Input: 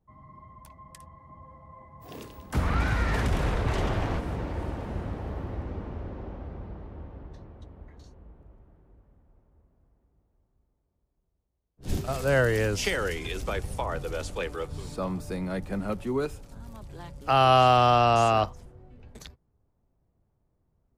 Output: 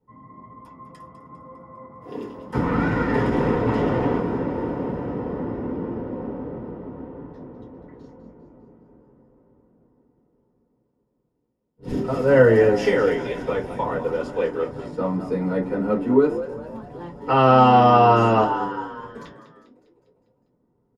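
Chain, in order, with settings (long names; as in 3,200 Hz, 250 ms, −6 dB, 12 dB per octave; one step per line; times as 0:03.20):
0:13.17–0:15.25: mu-law and A-law mismatch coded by A
low-pass filter 12,000 Hz 24 dB per octave
notch filter 1,600 Hz, Q 20
echo with shifted repeats 201 ms, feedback 55%, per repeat +90 Hz, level −12 dB
convolution reverb RT60 0.25 s, pre-delay 3 ms, DRR −4 dB
level −12 dB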